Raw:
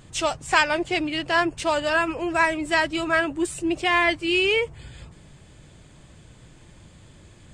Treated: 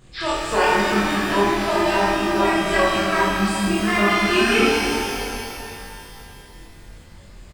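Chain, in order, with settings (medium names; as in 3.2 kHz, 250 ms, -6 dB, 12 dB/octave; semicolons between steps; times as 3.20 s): pitch shift switched off and on -9 st, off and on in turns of 102 ms; chorus voices 6, 0.9 Hz, delay 22 ms, depth 2.6 ms; on a send: early reflections 25 ms -3 dB, 52 ms -4.5 dB; on the sum: pitch-shifted reverb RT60 2.8 s, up +12 st, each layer -8 dB, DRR -2.5 dB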